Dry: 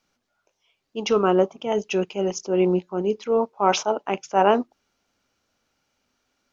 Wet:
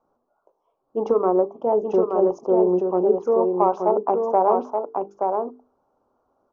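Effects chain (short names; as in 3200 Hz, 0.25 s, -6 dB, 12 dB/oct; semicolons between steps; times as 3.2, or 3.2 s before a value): EQ curve 190 Hz 0 dB, 410 Hz +10 dB, 1100 Hz +8 dB, 2100 Hz -30 dB; compressor 5:1, threshold -16 dBFS, peak gain reduction 11.5 dB; high shelf 3200 Hz +9.5 dB; notches 50/100/150/200/250/300/350/400/450 Hz; on a send: echo 0.876 s -4.5 dB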